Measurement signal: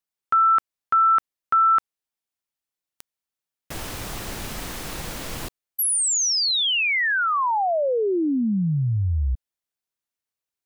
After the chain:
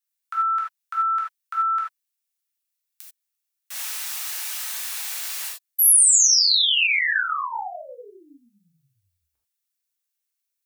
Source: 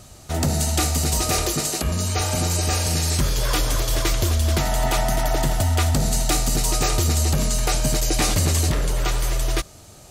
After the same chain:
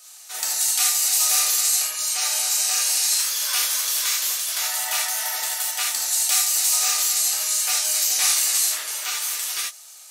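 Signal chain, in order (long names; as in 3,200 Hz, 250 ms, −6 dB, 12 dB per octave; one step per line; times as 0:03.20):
high-pass filter 1,100 Hz 12 dB per octave
spectral tilt +3 dB per octave
reverb whose tail is shaped and stops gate 110 ms flat, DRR −4.5 dB
level −8 dB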